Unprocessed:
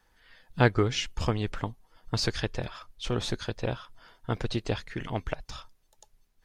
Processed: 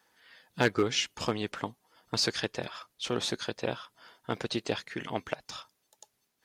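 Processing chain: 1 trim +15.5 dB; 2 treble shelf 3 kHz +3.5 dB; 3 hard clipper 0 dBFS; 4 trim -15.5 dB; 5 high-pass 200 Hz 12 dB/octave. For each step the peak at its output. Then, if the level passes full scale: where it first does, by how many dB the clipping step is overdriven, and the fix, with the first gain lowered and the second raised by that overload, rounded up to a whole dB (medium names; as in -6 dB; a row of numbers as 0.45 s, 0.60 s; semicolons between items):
+9.0 dBFS, +9.0 dBFS, 0.0 dBFS, -15.5 dBFS, -9.0 dBFS; step 1, 9.0 dB; step 1 +6.5 dB, step 4 -6.5 dB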